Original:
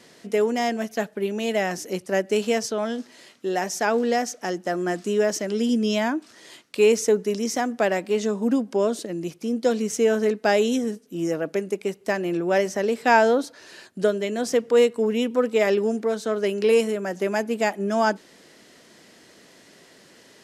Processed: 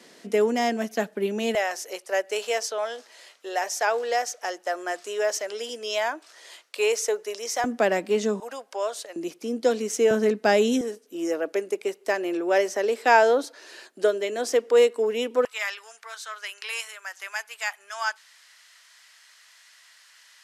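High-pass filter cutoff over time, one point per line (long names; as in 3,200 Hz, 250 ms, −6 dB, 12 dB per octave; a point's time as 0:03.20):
high-pass filter 24 dB per octave
180 Hz
from 0:01.55 500 Hz
from 0:07.64 190 Hz
from 0:08.40 610 Hz
from 0:09.16 260 Hz
from 0:10.11 110 Hz
from 0:10.81 320 Hz
from 0:15.45 1,100 Hz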